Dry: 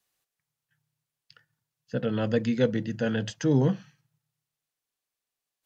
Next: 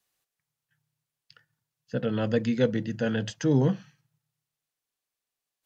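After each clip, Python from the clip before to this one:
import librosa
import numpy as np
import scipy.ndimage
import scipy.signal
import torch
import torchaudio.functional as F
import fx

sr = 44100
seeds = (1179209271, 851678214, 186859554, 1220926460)

y = x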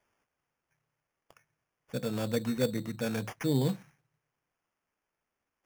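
y = fx.high_shelf(x, sr, hz=6900.0, db=11.0)
y = fx.sample_hold(y, sr, seeds[0], rate_hz=4000.0, jitter_pct=0)
y = F.gain(torch.from_numpy(y), -5.5).numpy()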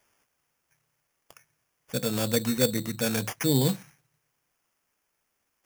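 y = fx.high_shelf(x, sr, hz=3600.0, db=11.5)
y = F.gain(torch.from_numpy(y), 4.0).numpy()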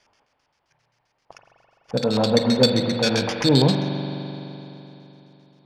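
y = fx.filter_lfo_lowpass(x, sr, shape='square', hz=7.6, low_hz=860.0, high_hz=4600.0, q=2.8)
y = fx.rev_spring(y, sr, rt60_s=3.4, pass_ms=(42,), chirp_ms=40, drr_db=4.5)
y = F.gain(torch.from_numpy(y), 5.5).numpy()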